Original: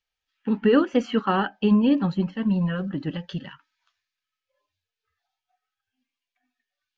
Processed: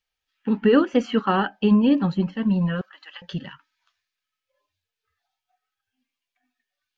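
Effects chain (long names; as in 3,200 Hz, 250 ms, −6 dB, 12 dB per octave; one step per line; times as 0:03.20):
0:02.81–0:03.22: high-pass filter 1,000 Hz 24 dB per octave
level +1.5 dB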